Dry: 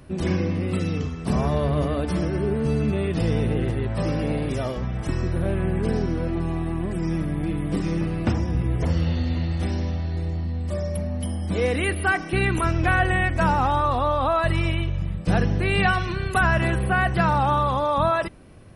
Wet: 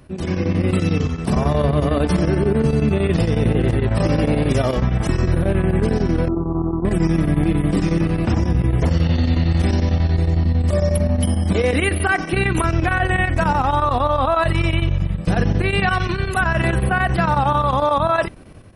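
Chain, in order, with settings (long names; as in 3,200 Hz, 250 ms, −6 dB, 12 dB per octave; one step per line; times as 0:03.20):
automatic gain control gain up to 11 dB
brickwall limiter −8.5 dBFS, peak gain reduction 7 dB
square-wave tremolo 11 Hz, depth 60%, duty 80%
0:06.28–0:06.85: Chebyshev low-pass with heavy ripple 1,400 Hz, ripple 6 dB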